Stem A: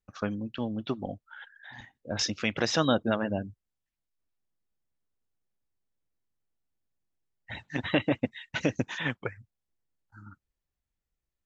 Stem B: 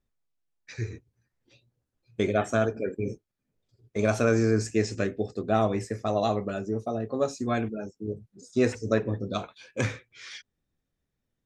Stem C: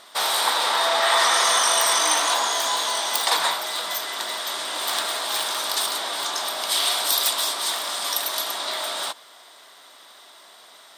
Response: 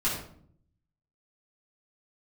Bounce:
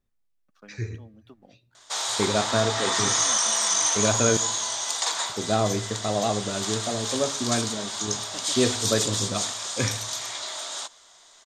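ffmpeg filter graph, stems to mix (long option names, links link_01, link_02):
-filter_complex "[0:a]highpass=frequency=150:width=0.5412,highpass=frequency=150:width=1.3066,aeval=exprs='sgn(val(0))*max(abs(val(0))-0.00211,0)':channel_layout=same,adelay=400,volume=-18dB[link_01];[1:a]volume=0dB,asplit=3[link_02][link_03][link_04];[link_02]atrim=end=4.37,asetpts=PTS-STARTPTS,afade=type=out:start_time=4.366:duration=0.004:curve=hsin[link_05];[link_03]atrim=start=4.37:end=5.29,asetpts=PTS-STARTPTS,volume=0[link_06];[link_04]atrim=start=5.29,asetpts=PTS-STARTPTS,afade=type=in:duration=0.004:curve=hsin[link_07];[link_05][link_06][link_07]concat=n=3:v=0:a=1,asplit=2[link_08][link_09];[link_09]volume=-23dB[link_10];[2:a]lowpass=frequency=6800:width_type=q:width=6.7,adelay=1750,volume=-9dB[link_11];[3:a]atrim=start_sample=2205[link_12];[link_10][link_12]afir=irnorm=-1:irlink=0[link_13];[link_01][link_08][link_11][link_13]amix=inputs=4:normalize=0"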